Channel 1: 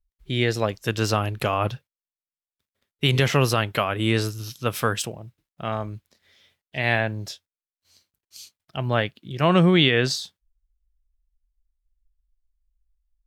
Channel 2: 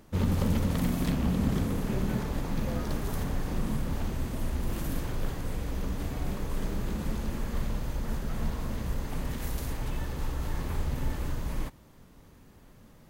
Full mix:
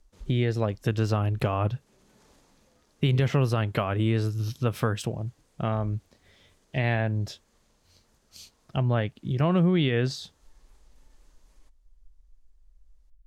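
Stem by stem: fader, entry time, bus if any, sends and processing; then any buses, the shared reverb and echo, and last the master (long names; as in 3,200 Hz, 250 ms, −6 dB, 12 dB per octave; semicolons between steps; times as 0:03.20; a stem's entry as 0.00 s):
+1.5 dB, 0.00 s, no send, spectral tilt −2.5 dB per octave
−18.5 dB, 0.00 s, no send, low-pass filter 7,400 Hz 12 dB per octave; bass and treble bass −11 dB, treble +14 dB; brickwall limiter −28 dBFS, peak gain reduction 9 dB; automatic ducking −9 dB, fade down 0.75 s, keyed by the first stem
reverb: not used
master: downward compressor 2.5 to 1, threshold −25 dBFS, peak gain reduction 12 dB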